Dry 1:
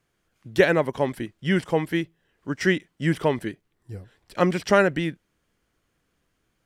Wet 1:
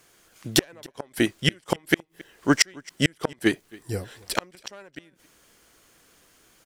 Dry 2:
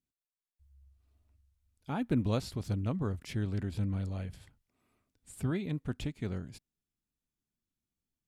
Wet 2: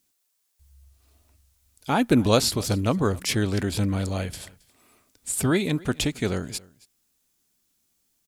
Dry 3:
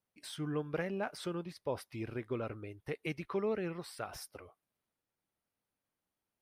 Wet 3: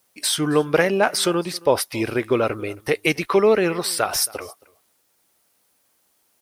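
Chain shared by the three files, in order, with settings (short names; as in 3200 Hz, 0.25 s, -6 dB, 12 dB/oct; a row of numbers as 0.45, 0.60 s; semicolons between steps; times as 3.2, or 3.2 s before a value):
one diode to ground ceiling -13 dBFS; tone controls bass -9 dB, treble +8 dB; flipped gate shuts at -18 dBFS, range -39 dB; echo 0.271 s -23.5 dB; normalise peaks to -3 dBFS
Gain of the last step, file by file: +14.0, +16.0, +20.0 dB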